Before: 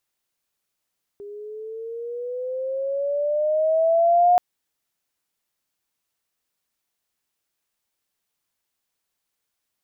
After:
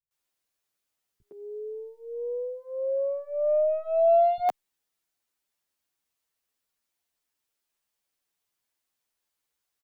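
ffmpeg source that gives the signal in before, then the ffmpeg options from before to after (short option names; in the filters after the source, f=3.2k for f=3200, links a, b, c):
-f lavfi -i "aevalsrc='pow(10,(-12+22.5*(t/3.18-1))/20)*sin(2*PI*404*3.18/(10*log(2)/12)*(exp(10*log(2)/12*t/3.18)-1))':d=3.18:s=44100"
-filter_complex "[0:a]aeval=exprs='0.251*(cos(1*acos(clip(val(0)/0.251,-1,1)))-cos(1*PI/2))+0.00398*(cos(2*acos(clip(val(0)/0.251,-1,1)))-cos(2*PI/2))+0.00708*(cos(3*acos(clip(val(0)/0.251,-1,1)))-cos(3*PI/2))+0.00282*(cos(5*acos(clip(val(0)/0.251,-1,1)))-cos(5*PI/2))+0.00224*(cos(6*acos(clip(val(0)/0.251,-1,1)))-cos(6*PI/2))':c=same,acrossover=split=150[a][b];[b]adelay=110[c];[a][c]amix=inputs=2:normalize=0,asplit=2[d][e];[e]adelay=9.5,afreqshift=-0.57[f];[d][f]amix=inputs=2:normalize=1"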